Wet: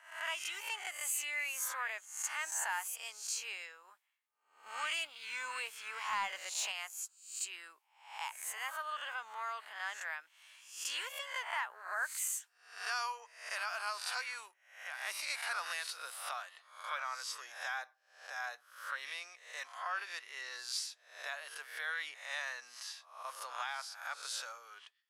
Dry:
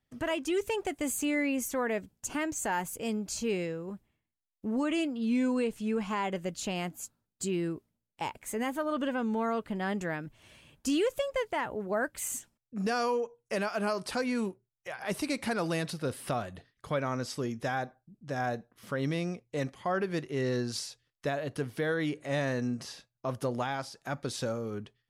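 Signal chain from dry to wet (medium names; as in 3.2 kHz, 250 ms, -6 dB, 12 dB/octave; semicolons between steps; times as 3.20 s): reverse spectral sustain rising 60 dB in 0.54 s; high-pass 1 kHz 24 dB/octave; 4.66–6.72 s: waveshaping leveller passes 1; trim -3 dB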